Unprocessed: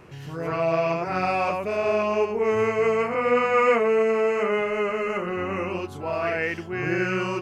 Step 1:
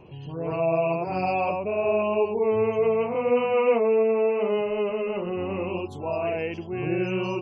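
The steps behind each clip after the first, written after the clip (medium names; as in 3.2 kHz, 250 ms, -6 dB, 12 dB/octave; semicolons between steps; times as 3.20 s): spectral gate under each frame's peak -30 dB strong; high-order bell 1.6 kHz -15 dB 1 oct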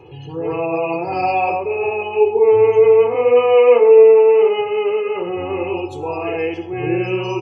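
high-pass 80 Hz; comb 2.4 ms, depth 87%; plate-style reverb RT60 0.76 s, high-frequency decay 0.65×, DRR 7 dB; trim +4 dB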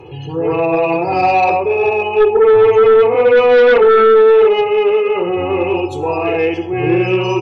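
sine folder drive 7 dB, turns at -1 dBFS; trim -4.5 dB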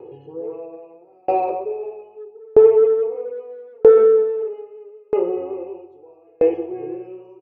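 band-pass filter 450 Hz, Q 2.2; feedback delay 185 ms, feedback 57%, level -13 dB; sawtooth tremolo in dB decaying 0.78 Hz, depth 38 dB; trim +2.5 dB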